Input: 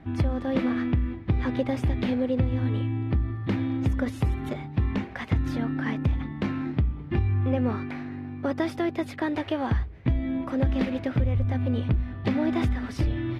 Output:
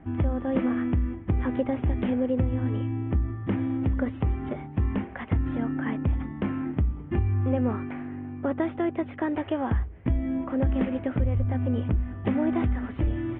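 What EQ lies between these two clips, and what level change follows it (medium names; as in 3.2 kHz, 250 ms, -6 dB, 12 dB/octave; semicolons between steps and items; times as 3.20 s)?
elliptic low-pass 3.2 kHz, stop band 40 dB; peaking EQ 130 Hz -8 dB 0.32 oct; treble shelf 2.1 kHz -10 dB; +1.5 dB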